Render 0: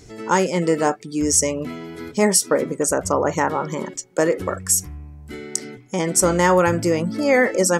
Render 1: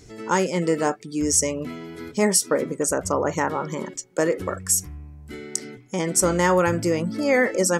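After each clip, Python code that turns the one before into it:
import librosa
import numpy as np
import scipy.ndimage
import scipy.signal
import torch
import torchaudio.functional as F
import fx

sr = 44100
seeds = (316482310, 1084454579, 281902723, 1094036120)

y = fx.peak_eq(x, sr, hz=770.0, db=-2.0, octaves=0.77)
y = y * 10.0 ** (-2.5 / 20.0)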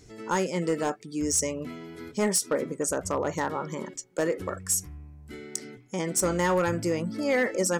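y = np.clip(x, -10.0 ** (-13.0 / 20.0), 10.0 ** (-13.0 / 20.0))
y = y * 10.0 ** (-5.0 / 20.0)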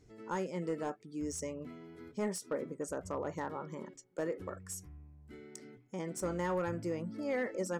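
y = fx.high_shelf(x, sr, hz=2500.0, db=-9.5)
y = y * 10.0 ** (-9.0 / 20.0)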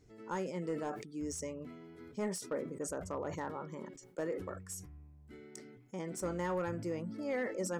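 y = fx.sustainer(x, sr, db_per_s=75.0)
y = y * 10.0 ** (-1.5 / 20.0)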